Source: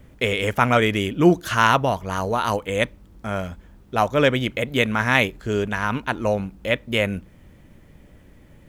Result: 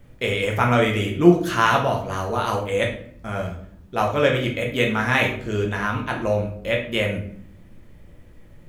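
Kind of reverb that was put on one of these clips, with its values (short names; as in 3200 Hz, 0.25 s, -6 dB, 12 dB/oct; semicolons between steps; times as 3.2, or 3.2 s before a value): shoebox room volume 89 m³, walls mixed, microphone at 0.78 m; gain -4 dB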